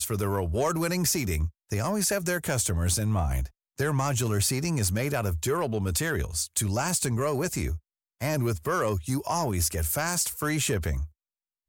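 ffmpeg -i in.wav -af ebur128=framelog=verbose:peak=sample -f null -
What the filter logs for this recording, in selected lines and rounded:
Integrated loudness:
  I:         -27.3 LUFS
  Threshold: -37.4 LUFS
Loudness range:
  LRA:         1.4 LU
  Threshold: -47.4 LUFS
  LRA low:   -28.2 LUFS
  LRA high:  -26.8 LUFS
Sample peak:
  Peak:      -16.4 dBFS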